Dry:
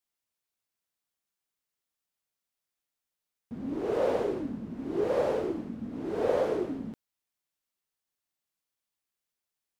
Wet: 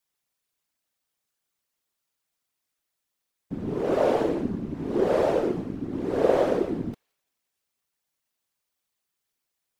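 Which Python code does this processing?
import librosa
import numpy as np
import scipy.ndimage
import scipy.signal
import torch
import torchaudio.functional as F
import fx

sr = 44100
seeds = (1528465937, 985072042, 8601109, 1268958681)

y = fx.echo_wet_highpass(x, sr, ms=171, feedback_pct=44, hz=2500.0, wet_db=-23.5)
y = fx.whisperise(y, sr, seeds[0])
y = F.gain(torch.from_numpy(y), 5.5).numpy()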